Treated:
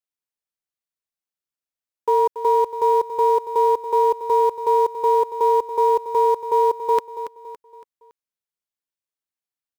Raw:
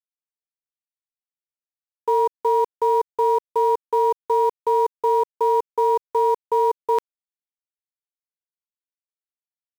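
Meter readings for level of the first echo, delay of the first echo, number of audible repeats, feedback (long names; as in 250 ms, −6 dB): −12.0 dB, 281 ms, 4, 43%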